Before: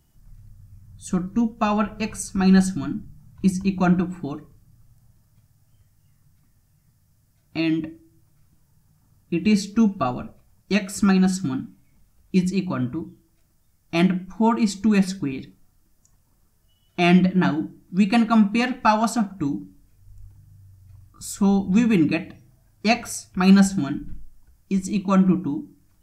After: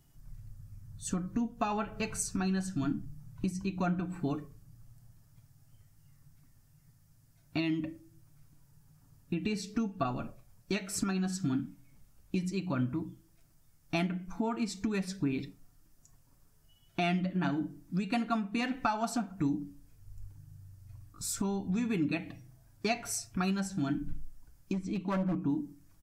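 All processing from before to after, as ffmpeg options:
-filter_complex "[0:a]asettb=1/sr,asplit=3[a][b][c];[a]atrim=end=24.734[d];[b]atrim=start=24.73:end=25.49,asetpts=PTS-STARTPTS,afade=t=in:d=0.004:c=qsin,afade=t=out:st=0.756:d=0.004:c=qsin,acrossover=split=5100[e][f];[f]acompressor=threshold=-51dB:ratio=4:attack=1:release=60[g];[e][g]amix=inputs=2:normalize=0,highshelf=f=3.9k:g=-8,asoftclip=type=hard:threshold=-16.5dB[h];[c]atrim=start=25.486[i];[d][h]acrossfade=d=0.004:c1=hsin:c2=qsin[j];[j][i]acrossfade=d=0.004:c1=qsin:c2=hsin,acompressor=threshold=-27dB:ratio=4,aecho=1:1:7.2:0.42,volume=-2.5dB"

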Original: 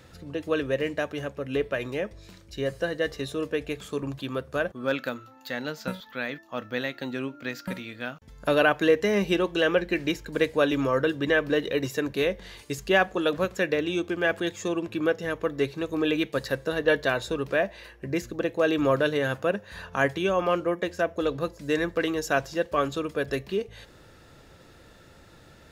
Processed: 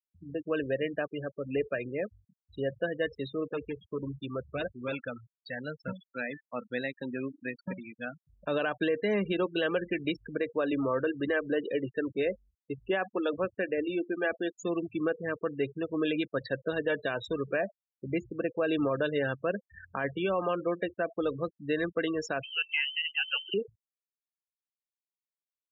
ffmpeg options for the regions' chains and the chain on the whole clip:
-filter_complex "[0:a]asettb=1/sr,asplit=3[a][b][c];[a]atrim=end=3.504[d];[b]atrim=start=3.5:end=5.93,asetpts=PTS-STARTPTS,afade=t=in:d=0.004:c=qsin,afade=t=out:st=2.426:d=0.004:c=qsin,asubboost=boost=7.5:cutoff=100,aeval=exprs='0.0668*(abs(mod(val(0)/0.0668+3,4)-2)-1)':c=same[e];[c]atrim=start=5.926[f];[d][e]acrossfade=d=0.004:c1=hsin:c2=qsin[g];[g][f]acrossfade=d=0.004:c1=qsin:c2=hsin,asettb=1/sr,asplit=3[h][i][j];[h]atrim=end=10.374[k];[i]atrim=start=10.37:end=14.59,asetpts=PTS-STARTPTS,afade=t=in:d=0.004:c=qsin,afade=t=out:st=4.216:d=0.004:c=qsin,lowpass=f=2.7k:p=1,equalizer=f=160:w=5.7:g=-12[l];[j]atrim=start=14.586[m];[k][l]acrossfade=d=0.004:c1=hsin:c2=qsin[n];[n][m]acrossfade=d=0.004:c1=qsin:c2=hsin,asettb=1/sr,asplit=3[o][p][q];[o]atrim=end=22.434[r];[p]atrim=start=22.43:end=23.54,asetpts=PTS-STARTPTS,afade=t=in:d=0.004:c=qsin,afade=t=out:st=1.106:d=0.004:c=qsin,lowpass=f=2.7k:t=q:w=0.5098,lowpass=f=2.7k:t=q:w=0.6013,lowpass=f=2.7k:t=q:w=0.9,lowpass=f=2.7k:t=q:w=2.563,afreqshift=-3200,acompressor=mode=upward:threshold=-29dB:ratio=2.5:attack=3.2:release=140:knee=2.83:detection=peak[s];[q]atrim=start=23.536[t];[r][s]acrossfade=d=0.004:c1=hsin:c2=qsin[u];[u][t]acrossfade=d=0.004:c1=qsin:c2=hsin,afftfilt=real='re*gte(hypot(re,im),0.0398)':imag='im*gte(hypot(re,im),0.0398)':win_size=1024:overlap=0.75,highpass=95,alimiter=limit=-16.5dB:level=0:latency=1:release=70,volume=-3dB"

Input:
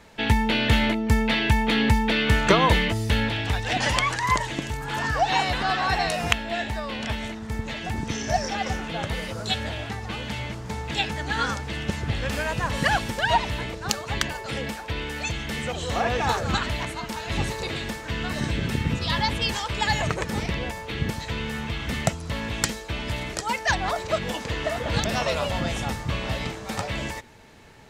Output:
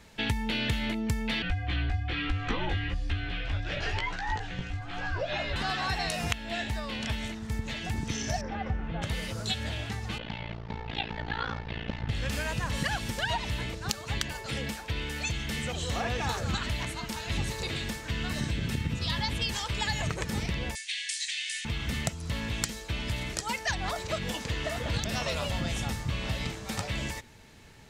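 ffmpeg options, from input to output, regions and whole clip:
-filter_complex "[0:a]asettb=1/sr,asplit=3[a][b][c];[a]atrim=end=1.424[d];[b]atrim=start=1.42:end=5.56,asetpts=PTS-STARTPTS,afade=t=in:d=0.004:c=qsin,afade=t=out:st=4.136:d=0.004:c=qsin,lowpass=3.5k,flanger=delay=15.5:depth=2.7:speed=1.1,afreqshift=-150[e];[c]atrim=start=5.556[f];[d][e]acrossfade=d=0.004:c1=hsin:c2=qsin[g];[g][f]acrossfade=d=0.004:c1=qsin:c2=hsin,asettb=1/sr,asplit=3[h][i][j];[h]atrim=end=8.414[k];[i]atrim=start=8.41:end=9.02,asetpts=PTS-STARTPTS,afade=t=in:d=0.004:c=qsin,afade=t=out:st=0.606:d=0.004:c=qsin,lowpass=1.5k,asubboost=boost=8.5:cutoff=160[l];[j]atrim=start=9.016[m];[k][l]acrossfade=d=0.004:c1=hsin:c2=qsin[n];[n][m]acrossfade=d=0.004:c1=qsin:c2=hsin,asettb=1/sr,asplit=3[o][p][q];[o]atrim=end=10.184[r];[p]atrim=start=10.18:end=12.09,asetpts=PTS-STARTPTS,afade=t=in:d=0.004:c=qsin,afade=t=out:st=1.906:d=0.004:c=qsin,lowpass=f=4k:w=0.5412,lowpass=f=4k:w=1.3066,tremolo=f=57:d=0.974,equalizer=f=730:t=o:w=1.4:g=6[s];[q]atrim=start=12.086[t];[r][s]acrossfade=d=0.004:c1=hsin:c2=qsin[u];[u][t]acrossfade=d=0.004:c1=qsin:c2=hsin,asettb=1/sr,asplit=3[v][w][x];[v]atrim=end=20.754[y];[w]atrim=start=20.75:end=21.65,asetpts=PTS-STARTPTS,afade=t=in:d=0.004:c=qsin,afade=t=out:st=0.896:d=0.004:c=qsin,asuperpass=centerf=4300:order=20:qfactor=0.53,aemphasis=mode=production:type=75kf[z];[x]atrim=start=21.646[aa];[y][z]acrossfade=d=0.004:c1=hsin:c2=qsin[ab];[ab][aa]acrossfade=d=0.004:c1=qsin:c2=hsin,equalizer=f=710:w=0.38:g=-7,acompressor=threshold=-26dB:ratio=6"

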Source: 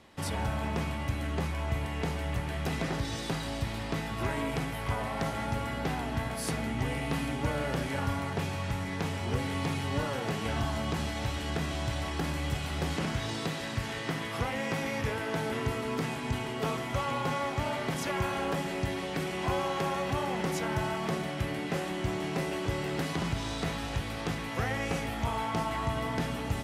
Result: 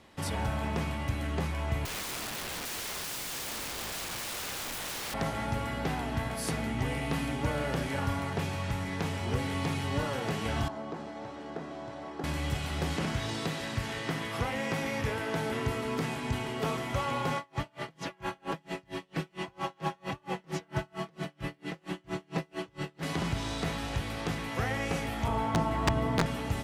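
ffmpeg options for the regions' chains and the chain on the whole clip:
-filter_complex "[0:a]asettb=1/sr,asplit=3[a][b][c];[a]atrim=end=1.854[d];[b]atrim=start=1.85:end=5.14,asetpts=PTS-STARTPTS,afade=t=in:d=0.004:c=qsin,afade=t=out:st=3.286:d=0.004:c=qsin,highshelf=f=3.3k:g=5,aeval=exprs='(mod(42.2*val(0)+1,2)-1)/42.2':c=same[e];[c]atrim=start=5.136[f];[d][e]acrossfade=d=0.004:c1=hsin:c2=qsin[g];[g][f]acrossfade=d=0.004:c1=qsin:c2=hsin,asettb=1/sr,asplit=3[h][i][j];[h]atrim=end=10.684[k];[i]atrim=start=10.68:end=12.24,asetpts=PTS-STARTPTS,afade=t=in:d=0.004:c=qsin,afade=t=out:st=1.556:d=0.004:c=qsin,highpass=300,lowpass=3.6k,equalizer=f=2.8k:w=0.64:g=-14.5[l];[j]atrim=start=12.236[m];[k][l]acrossfade=d=0.004:c1=hsin:c2=qsin[n];[n][m]acrossfade=d=0.004:c1=qsin:c2=hsin,asettb=1/sr,asplit=3[o][p][q];[o]atrim=end=17.374[r];[p]atrim=start=17.37:end=23.03,asetpts=PTS-STARTPTS,afade=t=in:d=0.004:c=qsin,afade=t=out:st=5.656:d=0.004:c=qsin,acrossover=split=6100[s][t];[t]acompressor=threshold=-56dB:ratio=4:attack=1:release=60[u];[s][u]amix=inputs=2:normalize=0,aecho=1:1:6.1:0.58,atrim=end_sample=249606,aeval=exprs='val(0)*pow(10,-36*(0.5-0.5*cos(2*PI*4.4*n/s))/20)':c=same[v];[q]atrim=start=23.026[w];[r][v]acrossfade=d=0.004:c1=hsin:c2=qsin[x];[x][w]acrossfade=d=0.004:c1=qsin:c2=hsin,asettb=1/sr,asplit=3[y][z][aa];[y]atrim=end=25.284[ab];[z]atrim=start=25.28:end=26.26,asetpts=PTS-STARTPTS,afade=t=in:d=0.004:c=qsin,afade=t=out:st=0.976:d=0.004:c=qsin,tiltshelf=f=1.1k:g=5.5,aeval=exprs='(mod(7.5*val(0)+1,2)-1)/7.5':c=same,acrossover=split=8900[ac][ad];[ad]acompressor=threshold=-47dB:ratio=4:attack=1:release=60[ae];[ac][ae]amix=inputs=2:normalize=0[af];[aa]atrim=start=26.256[ag];[ab][af]acrossfade=d=0.004:c1=hsin:c2=qsin[ah];[ah][ag]acrossfade=d=0.004:c1=qsin:c2=hsin"

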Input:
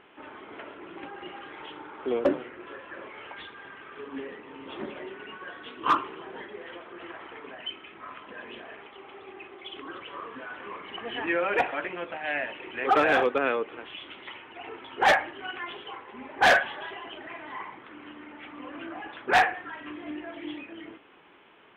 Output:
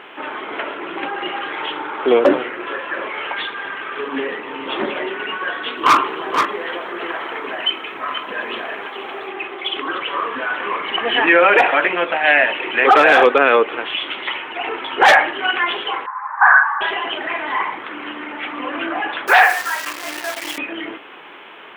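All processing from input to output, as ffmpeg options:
-filter_complex "[0:a]asettb=1/sr,asplit=3[a][b][c];[a]atrim=end=5.774[d];[b]atrim=start=5.77:end=9.28,asetpts=PTS-STARTPTS,afade=t=in:d=0.004:c=qsin,afade=t=out:st=3.506:d=0.004:c=qsin,highshelf=f=4.3k:t=q:w=1.5:g=7.5,aeval=exprs='clip(val(0),-1,0.0562)':c=same,aecho=1:1:480:0.316,atrim=end_sample=154791[e];[c]atrim=start=9.276[f];[d][e]acrossfade=d=0.004:c1=hsin:c2=qsin[g];[g][f]acrossfade=d=0.004:c1=qsin:c2=hsin,asettb=1/sr,asplit=3[h][i][j];[h]atrim=end=16.064[k];[i]atrim=start=16.06:end=16.81,asetpts=PTS-STARTPTS,afade=t=in:d=0.004:c=qsin,afade=t=out:st=0.746:d=0.004:c=qsin,asuperpass=centerf=1200:order=8:qfactor=1.4,equalizer=f=1.1k:t=o:w=0.34:g=8.5[l];[j]atrim=start=16.806[m];[k][l]acrossfade=d=0.004:c1=hsin:c2=qsin[n];[n][m]acrossfade=d=0.004:c1=qsin:c2=hsin,asettb=1/sr,asplit=3[o][p][q];[o]atrim=end=19.274[r];[p]atrim=start=19.27:end=20.58,asetpts=PTS-STARTPTS,afade=t=in:d=0.004:c=qsin,afade=t=out:st=1.306:d=0.004:c=qsin,highpass=610,lowpass=3.4k,acrusher=bits=8:dc=4:mix=0:aa=0.000001[s];[q]atrim=start=20.576[t];[r][s]acrossfade=d=0.004:c1=hsin:c2=qsin[u];[u][t]acrossfade=d=0.004:c1=qsin:c2=hsin,highpass=f=530:p=1,alimiter=level_in=19.5dB:limit=-1dB:release=50:level=0:latency=1,volume=-1dB"

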